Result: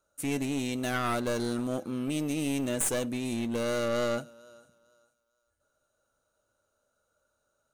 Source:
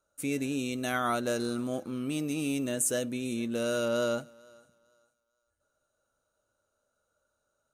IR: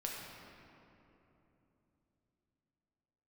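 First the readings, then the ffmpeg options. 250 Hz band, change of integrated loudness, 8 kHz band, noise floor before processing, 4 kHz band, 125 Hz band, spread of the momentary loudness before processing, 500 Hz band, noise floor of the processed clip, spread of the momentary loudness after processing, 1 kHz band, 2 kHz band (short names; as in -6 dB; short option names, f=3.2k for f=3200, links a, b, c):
+1.0 dB, +0.5 dB, -0.5 dB, -80 dBFS, +0.5 dB, +3.0 dB, 6 LU, 0.0 dB, -78 dBFS, 5 LU, 0.0 dB, 0.0 dB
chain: -af "aeval=exprs='clip(val(0),-1,0.0237)':c=same,volume=2dB"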